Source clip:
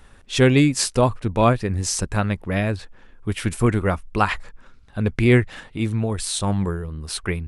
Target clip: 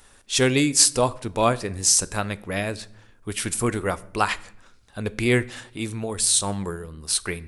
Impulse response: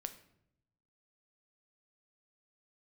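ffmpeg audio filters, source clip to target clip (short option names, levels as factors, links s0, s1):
-filter_complex "[0:a]bass=f=250:g=-7,treble=f=4000:g=11,asplit=2[s0][s1];[1:a]atrim=start_sample=2205[s2];[s1][s2]afir=irnorm=-1:irlink=0,volume=0.891[s3];[s0][s3]amix=inputs=2:normalize=0,volume=0.473"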